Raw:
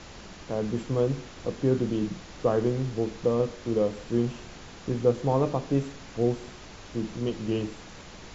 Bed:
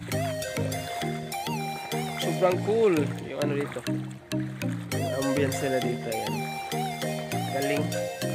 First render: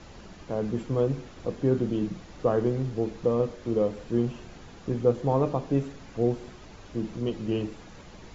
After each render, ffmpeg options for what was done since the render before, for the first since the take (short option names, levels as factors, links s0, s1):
-af "afftdn=nr=7:nf=-46"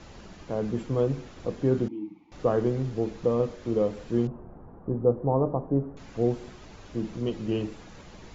-filter_complex "[0:a]asettb=1/sr,asplit=3[s0][s1][s2];[s0]atrim=end=1.884[s3];[s1]atrim=start=1.88:end=2.32,asetpts=PTS-STARTPTS,afade=t=in:d=0.004:c=qsin,afade=t=out:st=0.436:d=0.004:c=qsin,asplit=3[s4][s5][s6];[s4]bandpass=f=300:t=q:w=8,volume=1[s7];[s5]bandpass=f=870:t=q:w=8,volume=0.501[s8];[s6]bandpass=f=2240:t=q:w=8,volume=0.355[s9];[s7][s8][s9]amix=inputs=3:normalize=0[s10];[s2]atrim=start=2.316[s11];[s3][s10]acrossfade=d=0.004:c1=hsin:c2=qsin[s12];[s12][s11]acrossfade=d=0.004:c1=qsin:c2=hsin,asettb=1/sr,asplit=3[s13][s14][s15];[s13]atrim=end=4.274[s16];[s14]atrim=start=4.27:end=5.97,asetpts=PTS-STARTPTS,afade=t=in:d=0.004:c=qsin,afade=t=out:st=1.696:d=0.004:c=qsin,lowpass=f=1100:w=0.5412,lowpass=f=1100:w=1.3066[s17];[s15]atrim=start=5.966[s18];[s16][s17]acrossfade=d=0.004:c1=hsin:c2=qsin[s19];[s19][s18]acrossfade=d=0.004:c1=qsin:c2=hsin"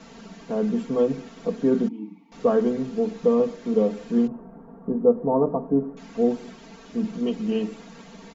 -af "lowshelf=f=120:t=q:w=1.5:g=-12.5,aecho=1:1:4.4:0.93"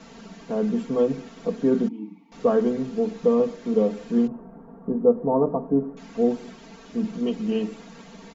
-af anull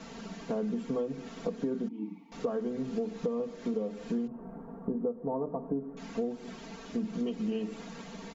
-af "acompressor=threshold=0.0355:ratio=12"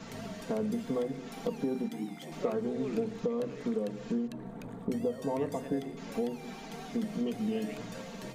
-filter_complex "[1:a]volume=0.133[s0];[0:a][s0]amix=inputs=2:normalize=0"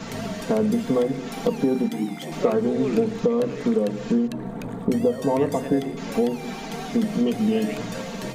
-af "volume=3.55"